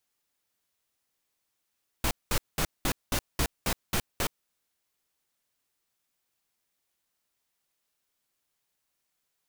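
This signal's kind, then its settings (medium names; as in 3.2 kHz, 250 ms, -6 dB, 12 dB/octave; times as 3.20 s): noise bursts pink, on 0.07 s, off 0.20 s, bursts 9, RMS -26.5 dBFS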